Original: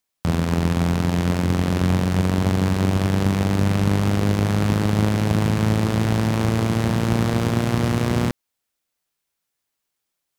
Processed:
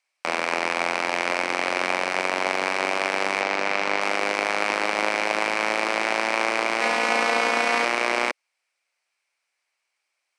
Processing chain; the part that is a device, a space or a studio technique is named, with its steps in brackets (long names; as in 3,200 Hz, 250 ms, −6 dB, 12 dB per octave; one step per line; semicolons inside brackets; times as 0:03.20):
phone speaker on a table (loudspeaker in its box 440–8,200 Hz, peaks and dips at 440 Hz −7 dB, 2,300 Hz +10 dB, 3,500 Hz −6 dB, 6,900 Hz −7 dB)
0:03.41–0:04.01: low-pass filter 6,700 Hz 12 dB per octave
0:06.81–0:07.85: comb filter 4.1 ms, depth 78%
level +5 dB